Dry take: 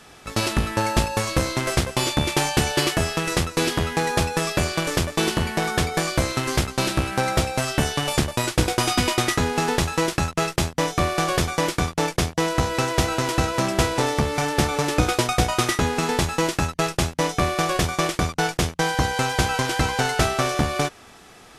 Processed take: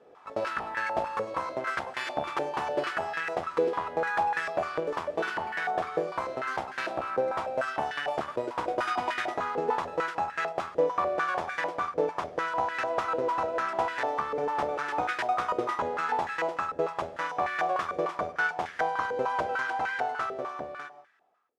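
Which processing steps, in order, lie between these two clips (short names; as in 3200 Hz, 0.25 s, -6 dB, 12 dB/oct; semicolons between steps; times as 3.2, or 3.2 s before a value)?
ending faded out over 2.23 s; non-linear reverb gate 0.21 s flat, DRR 11 dB; stepped band-pass 6.7 Hz 490–1700 Hz; gain +3 dB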